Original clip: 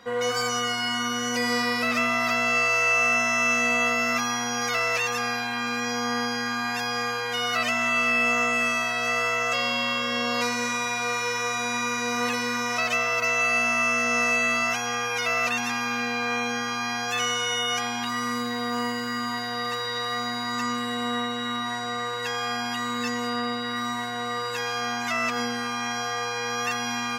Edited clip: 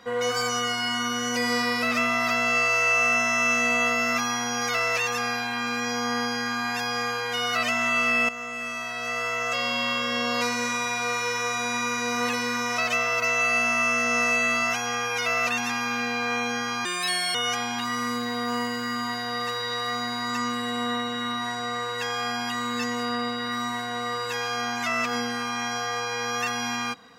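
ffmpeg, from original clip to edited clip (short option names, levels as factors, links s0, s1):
-filter_complex "[0:a]asplit=4[s0][s1][s2][s3];[s0]atrim=end=8.29,asetpts=PTS-STARTPTS,afade=t=out:st=8.286:d=0.004:c=hsin:silence=0.211349[s4];[s1]atrim=start=8.29:end=16.854,asetpts=PTS-STARTPTS,afade=t=in:d=1.6:silence=0.211349[s5];[s2]atrim=start=16.85:end=17.59,asetpts=PTS-STARTPTS,asetrate=65709,aresample=44100,atrim=end_sample=21902,asetpts=PTS-STARTPTS[s6];[s3]atrim=start=17.586[s7];[s4][s5]concat=n=2:v=0:a=1[s8];[s8][s6]acrossfade=d=0.004:c1=hsin:c2=hsin[s9];[s9][s7]acrossfade=d=0.004:c1=hsin:c2=hsin"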